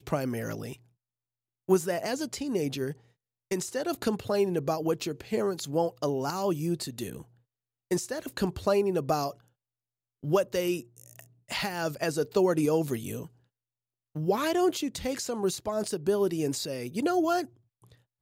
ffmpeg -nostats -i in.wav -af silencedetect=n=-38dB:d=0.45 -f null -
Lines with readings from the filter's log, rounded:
silence_start: 0.74
silence_end: 1.69 | silence_duration: 0.95
silence_start: 2.93
silence_end: 3.51 | silence_duration: 0.58
silence_start: 7.22
silence_end: 7.91 | silence_duration: 0.69
silence_start: 9.31
silence_end: 10.24 | silence_duration: 0.93
silence_start: 13.26
silence_end: 14.16 | silence_duration: 0.90
silence_start: 17.45
silence_end: 18.21 | silence_duration: 0.76